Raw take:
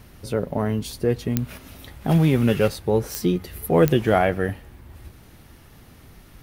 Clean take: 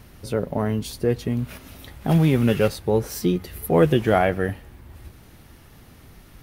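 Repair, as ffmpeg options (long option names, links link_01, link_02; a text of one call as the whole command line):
ffmpeg -i in.wav -af "adeclick=threshold=4" out.wav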